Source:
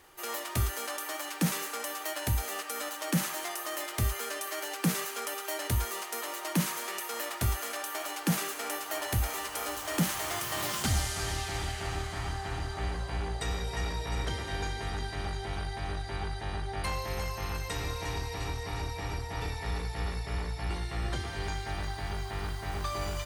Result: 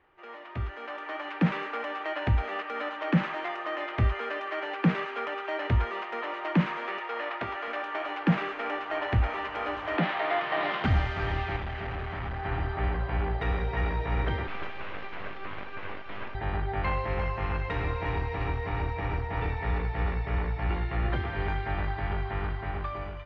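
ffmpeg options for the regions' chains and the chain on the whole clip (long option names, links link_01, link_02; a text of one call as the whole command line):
ffmpeg -i in.wav -filter_complex "[0:a]asettb=1/sr,asplit=3[link_01][link_02][link_03];[link_01]atrim=end=6.984[link_04];[link_02]atrim=start=6.98:end=7.68,asetpts=PTS-STARTPTS,afade=type=in:duration=0.004:curve=qsin,afade=type=out:start_time=0.696:duration=0.004:curve=qsin,highpass=330,lowpass=6500,acrusher=bits=6:mode=log:mix=0:aa=0.000001[link_05];[link_03]atrim=start=7.676[link_06];[link_04][link_05]acrossfade=duration=0.004:curve1=hsin:curve2=qsin[link_07];[link_07][link_06]acrossfade=duration=0.004:curve1=qsin:curve2=hsin,asettb=1/sr,asplit=3[link_08][link_09][link_10];[link_08]atrim=end=9.974[link_11];[link_09]atrim=start=9.97:end=10.84,asetpts=PTS-STARTPTS,afade=type=in:duration=0.004:curve=qsin,afade=type=out:start_time=0.866:duration=0.004:curve=qsin,highpass=frequency=190:width=0.5412,highpass=frequency=190:width=1.3066,equalizer=frequency=230:width_type=q:width=4:gain=-7,equalizer=frequency=710:width_type=q:width=4:gain=6,equalizer=frequency=2000:width_type=q:width=4:gain=3,equalizer=frequency=3800:width_type=q:width=4:gain=5,lowpass=frequency=5200:width=0.5412,lowpass=frequency=5200:width=1.3066,asplit=2[link_12][link_13];[link_13]adelay=13,volume=-11dB[link_14];[link_12][link_14]amix=inputs=2:normalize=0,atrim=end_sample=38367[link_15];[link_10]atrim=start=10.836[link_16];[link_11][link_15]acrossfade=duration=0.004:curve1=hsin:curve2=qsin[link_17];[link_17][link_16]acrossfade=duration=0.004:curve1=qsin:curve2=hsin,asettb=1/sr,asplit=3[link_18][link_19][link_20];[link_18]atrim=end=11.564[link_21];[link_19]atrim=start=11.56:end=12.45,asetpts=PTS-STARTPTS,afade=type=in:duration=0.004:curve=qsin,afade=type=out:start_time=0.886:duration=0.004:curve=qsin,volume=36dB,asoftclip=hard,volume=-36dB,acrusher=bits=7:mix=0:aa=0.5[link_22];[link_20]atrim=start=12.446[link_23];[link_21][link_22]acrossfade=duration=0.004:curve1=hsin:curve2=qsin[link_24];[link_24][link_23]acrossfade=duration=0.004:curve1=qsin:curve2=hsin,asettb=1/sr,asplit=3[link_25][link_26][link_27];[link_25]atrim=end=14.474[link_28];[link_26]atrim=start=14.47:end=16.35,asetpts=PTS-STARTPTS,afade=type=in:duration=0.004:curve=qsin,afade=type=out:start_time=1.876:duration=0.004:curve=qsin,highpass=frequency=180:width=0.5412,highpass=frequency=180:width=1.3066,aeval=exprs='abs(val(0))':channel_layout=same[link_29];[link_27]atrim=start=16.346[link_30];[link_28][link_29]acrossfade=duration=0.004:curve1=hsin:curve2=qsin[link_31];[link_31][link_30]acrossfade=duration=0.004:curve1=qsin:curve2=hsin,dynaudnorm=framelen=390:gausssize=5:maxgain=11.5dB,lowpass=frequency=2600:width=0.5412,lowpass=frequency=2600:width=1.3066,volume=-6.5dB" out.wav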